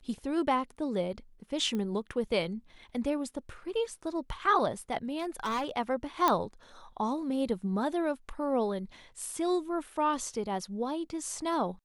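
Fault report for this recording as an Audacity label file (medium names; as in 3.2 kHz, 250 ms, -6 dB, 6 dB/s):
1.750000	1.750000	pop -23 dBFS
5.180000	5.770000	clipped -28.5 dBFS
6.280000	6.280000	pop -11 dBFS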